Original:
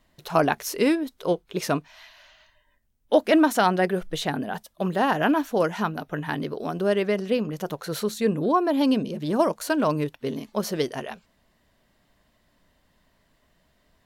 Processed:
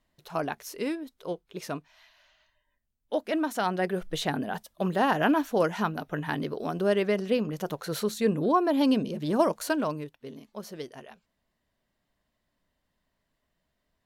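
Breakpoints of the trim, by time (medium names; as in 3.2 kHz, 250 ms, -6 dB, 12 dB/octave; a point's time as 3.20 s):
3.41 s -10 dB
4.17 s -2 dB
9.68 s -2 dB
10.10 s -13 dB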